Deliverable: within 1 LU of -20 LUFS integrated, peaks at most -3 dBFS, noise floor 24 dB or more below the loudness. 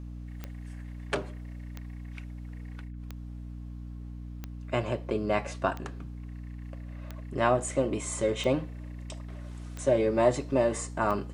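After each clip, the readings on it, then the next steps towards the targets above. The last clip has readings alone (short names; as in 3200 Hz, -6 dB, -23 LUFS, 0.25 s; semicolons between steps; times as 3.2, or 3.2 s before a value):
clicks 9; hum 60 Hz; harmonics up to 300 Hz; hum level -38 dBFS; loudness -29.5 LUFS; peak -9.5 dBFS; loudness target -20.0 LUFS
-> de-click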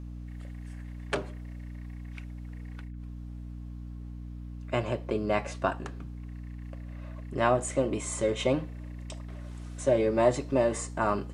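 clicks 0; hum 60 Hz; harmonics up to 300 Hz; hum level -38 dBFS
-> notches 60/120/180/240/300 Hz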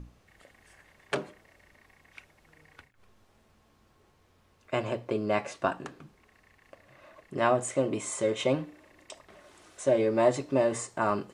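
hum none; loudness -29.0 LUFS; peak -10.0 dBFS; loudness target -20.0 LUFS
-> gain +9 dB; limiter -3 dBFS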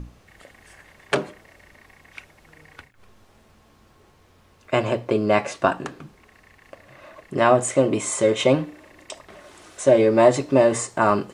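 loudness -20.5 LUFS; peak -3.0 dBFS; noise floor -56 dBFS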